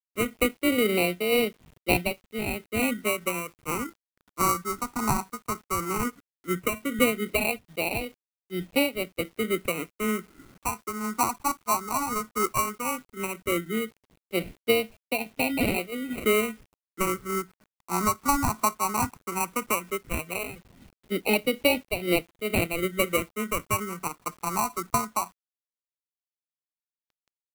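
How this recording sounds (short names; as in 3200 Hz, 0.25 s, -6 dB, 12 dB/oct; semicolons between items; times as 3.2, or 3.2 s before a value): aliases and images of a low sample rate 1700 Hz, jitter 0%; phasing stages 4, 0.15 Hz, lowest notch 530–1100 Hz; a quantiser's noise floor 10-bit, dither none; noise-modulated level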